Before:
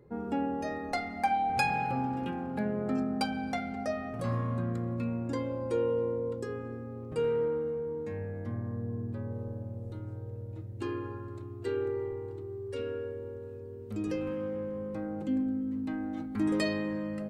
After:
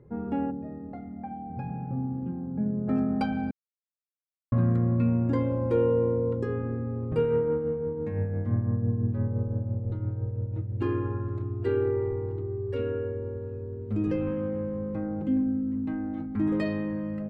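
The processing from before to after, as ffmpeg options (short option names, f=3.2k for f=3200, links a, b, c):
-filter_complex "[0:a]asplit=3[a][b][c];[a]afade=t=out:st=0.5:d=0.02[d];[b]bandpass=f=170:t=q:w=0.9,afade=t=in:st=0.5:d=0.02,afade=t=out:st=2.87:d=0.02[e];[c]afade=t=in:st=2.87:d=0.02[f];[d][e][f]amix=inputs=3:normalize=0,asettb=1/sr,asplit=3[g][h][i];[g]atrim=end=7.194[j];[h]atrim=start=7.19:end=10.8,asetpts=PTS-STARTPTS,afade=t=in:d=0.004:c=qsin,afade=t=out:st=3.606:d=0.004:c=qsin,tremolo=f=5.9:d=0.4[k];[i]atrim=start=10.796[l];[j][k]acrossfade=d=0.004:c1=hsin:c2=qsin[m];[m][l]acrossfade=d=0.004:c1=qsin:c2=hsin,asplit=3[n][o][p];[n]atrim=end=3.51,asetpts=PTS-STARTPTS,afade=t=out:st=3.506:d=0.004:c=hsin[q];[o]atrim=start=3.51:end=4.52,asetpts=PTS-STARTPTS,volume=0[r];[p]atrim=start=4.52,asetpts=PTS-STARTPTS,afade=t=in:d=0.004:c=hsin[s];[q][r][s]concat=n=3:v=0:a=1,highshelf=f=4.6k:g=-11.5,dynaudnorm=f=710:g=11:m=5dB,bass=f=250:g=7,treble=f=4k:g=-10"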